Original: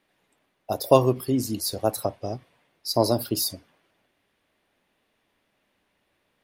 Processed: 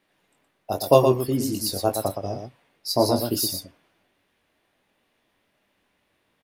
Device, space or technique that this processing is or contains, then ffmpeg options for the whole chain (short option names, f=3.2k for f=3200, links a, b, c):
slapback doubling: -filter_complex "[0:a]asplit=3[a][b][c];[b]adelay=21,volume=-5.5dB[d];[c]adelay=119,volume=-6dB[e];[a][d][e]amix=inputs=3:normalize=0"